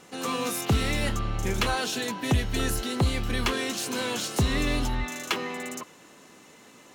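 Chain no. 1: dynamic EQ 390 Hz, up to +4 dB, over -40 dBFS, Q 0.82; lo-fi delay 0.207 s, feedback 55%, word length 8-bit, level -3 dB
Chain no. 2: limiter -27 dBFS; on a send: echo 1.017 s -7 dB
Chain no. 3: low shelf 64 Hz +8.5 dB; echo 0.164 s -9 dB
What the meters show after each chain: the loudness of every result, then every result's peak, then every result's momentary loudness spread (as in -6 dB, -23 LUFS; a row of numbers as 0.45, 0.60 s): -25.0, -35.0, -25.5 LUFS; -10.5, -24.0, -11.0 dBFS; 7, 8, 6 LU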